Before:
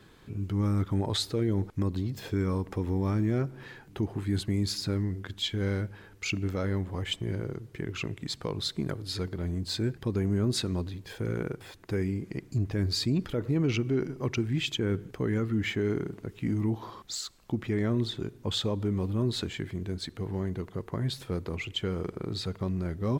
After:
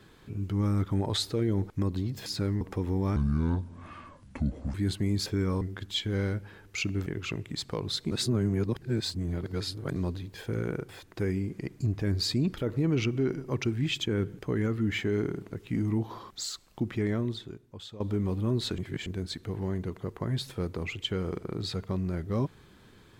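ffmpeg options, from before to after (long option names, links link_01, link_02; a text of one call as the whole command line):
ffmpeg -i in.wav -filter_complex "[0:a]asplit=13[link_01][link_02][link_03][link_04][link_05][link_06][link_07][link_08][link_09][link_10][link_11][link_12][link_13];[link_01]atrim=end=2.262[link_14];[link_02]atrim=start=4.738:end=5.092[link_15];[link_03]atrim=start=2.608:end=3.164[link_16];[link_04]atrim=start=3.16:end=4.22,asetpts=PTS-STARTPTS,asetrate=29547,aresample=44100,atrim=end_sample=69770,asetpts=PTS-STARTPTS[link_17];[link_05]atrim=start=4.216:end=4.742[link_18];[link_06]atrim=start=2.258:end=2.612[link_19];[link_07]atrim=start=5.088:end=6.542[link_20];[link_08]atrim=start=7.778:end=8.832[link_21];[link_09]atrim=start=8.828:end=10.682,asetpts=PTS-STARTPTS,areverse[link_22];[link_10]atrim=start=10.678:end=18.72,asetpts=PTS-STARTPTS,afade=type=out:start_time=7.092:duration=0.95:curve=qua:silence=0.16788[link_23];[link_11]atrim=start=18.72:end=19.502,asetpts=PTS-STARTPTS,afade=type=in:duration=0.004:curve=hsin:silence=0.16788[link_24];[link_12]atrim=start=19.498:end=19.782,asetpts=PTS-STARTPTS,areverse[link_25];[link_13]atrim=start=19.778[link_26];[link_14][link_15]acrossfade=duration=0.004:curve1=hsin:curve2=hsin[link_27];[link_27][link_16]acrossfade=duration=0.004:curve1=hsin:curve2=hsin[link_28];[link_28][link_17]acrossfade=duration=0.004:curve1=hsin:curve2=hsin[link_29];[link_29][link_18]acrossfade=duration=0.004:curve1=hsin:curve2=hsin[link_30];[link_30][link_19]acrossfade=duration=0.004:curve1=hsin:curve2=hsin[link_31];[link_31][link_20]acrossfade=duration=0.004:curve1=hsin:curve2=hsin[link_32];[link_32][link_21]acrossfade=duration=0.004:curve1=hsin:curve2=hsin[link_33];[link_33][link_22]acrossfade=duration=0.004:curve1=hsin:curve2=hsin[link_34];[link_23][link_24]concat=n=2:v=0:a=1[link_35];[link_34][link_35]acrossfade=duration=0.004:curve1=hsin:curve2=hsin[link_36];[link_36][link_25]acrossfade=duration=0.004:curve1=hsin:curve2=hsin[link_37];[link_37][link_26]acrossfade=duration=0.004:curve1=hsin:curve2=hsin" out.wav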